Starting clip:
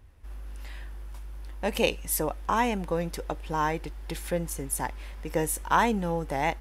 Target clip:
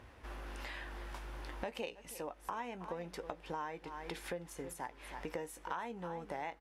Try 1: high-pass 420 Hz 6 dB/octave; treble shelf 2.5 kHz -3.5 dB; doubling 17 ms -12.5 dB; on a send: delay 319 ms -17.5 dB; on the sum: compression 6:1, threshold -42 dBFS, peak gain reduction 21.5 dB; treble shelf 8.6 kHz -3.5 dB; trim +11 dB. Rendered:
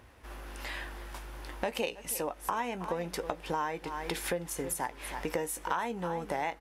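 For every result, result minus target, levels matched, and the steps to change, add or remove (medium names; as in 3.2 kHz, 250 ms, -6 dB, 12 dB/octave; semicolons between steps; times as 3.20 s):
compression: peak gain reduction -8.5 dB; 8 kHz band +5.5 dB
change: compression 6:1, threshold -52 dBFS, peak gain reduction 30 dB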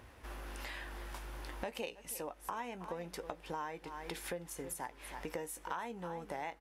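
8 kHz band +5.5 dB
change: second treble shelf 8.6 kHz -15 dB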